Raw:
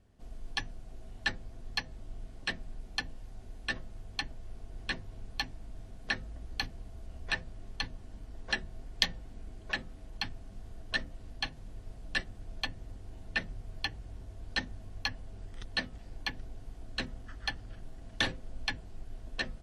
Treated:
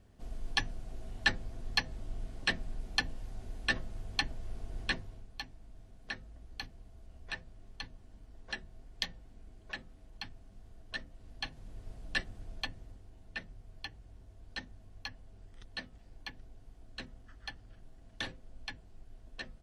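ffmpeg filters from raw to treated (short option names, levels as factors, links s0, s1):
-af "volume=3.35,afade=t=out:st=4.79:d=0.48:silence=0.266073,afade=t=in:st=11.11:d=0.77:silence=0.446684,afade=t=out:st=12.41:d=0.7:silence=0.398107"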